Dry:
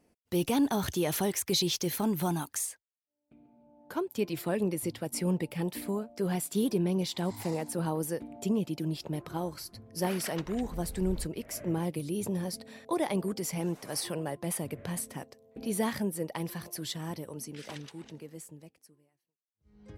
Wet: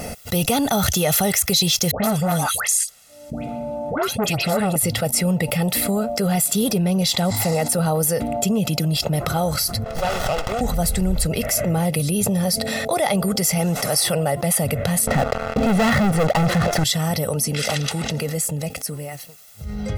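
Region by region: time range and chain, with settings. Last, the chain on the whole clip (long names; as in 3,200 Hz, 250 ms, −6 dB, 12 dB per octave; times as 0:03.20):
0:01.91–0:04.76: low-pass filter 11,000 Hz + all-pass dispersion highs, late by 128 ms, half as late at 1,400 Hz + saturating transformer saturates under 870 Hz
0:09.84–0:10.61: band-pass filter 710–4,700 Hz + windowed peak hold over 17 samples
0:15.07–0:16.84: low-pass filter 1,800 Hz + leveller curve on the samples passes 5
whole clip: high-shelf EQ 4,800 Hz +5.5 dB; comb filter 1.5 ms, depth 75%; envelope flattener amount 70%; level +3 dB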